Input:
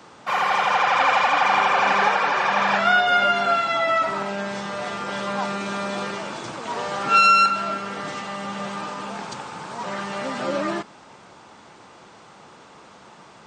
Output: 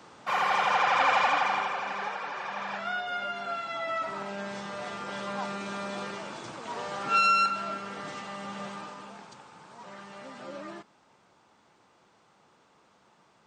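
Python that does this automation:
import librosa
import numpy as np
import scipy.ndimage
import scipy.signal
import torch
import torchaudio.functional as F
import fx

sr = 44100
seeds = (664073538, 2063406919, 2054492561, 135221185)

y = fx.gain(x, sr, db=fx.line((1.29, -5.0), (1.85, -15.0), (3.31, -15.0), (4.46, -8.0), (8.64, -8.0), (9.33, -16.0)))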